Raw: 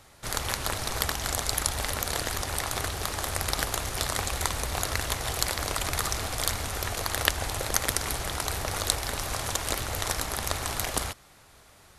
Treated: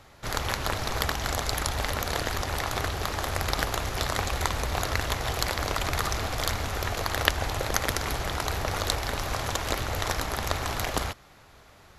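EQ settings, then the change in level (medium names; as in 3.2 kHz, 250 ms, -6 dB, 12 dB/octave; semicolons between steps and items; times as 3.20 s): treble shelf 4.6 kHz -7.5 dB; peaking EQ 9 kHz -12.5 dB 0.21 oct; +3.0 dB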